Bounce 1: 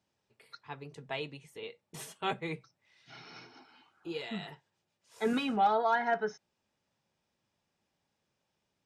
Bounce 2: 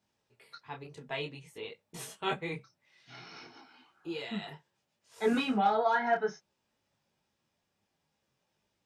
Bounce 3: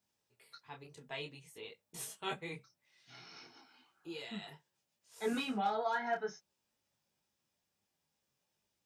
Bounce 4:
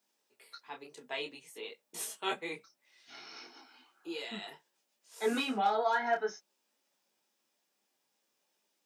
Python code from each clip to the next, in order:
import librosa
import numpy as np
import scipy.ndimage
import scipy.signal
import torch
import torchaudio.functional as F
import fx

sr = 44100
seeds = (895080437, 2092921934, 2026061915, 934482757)

y1 = fx.detune_double(x, sr, cents=20)
y1 = F.gain(torch.from_numpy(y1), 5.0).numpy()
y2 = fx.high_shelf(y1, sr, hz=5300.0, db=11.5)
y2 = F.gain(torch.from_numpy(y2), -7.5).numpy()
y3 = scipy.signal.sosfilt(scipy.signal.butter(4, 240.0, 'highpass', fs=sr, output='sos'), y2)
y3 = F.gain(torch.from_numpy(y3), 5.0).numpy()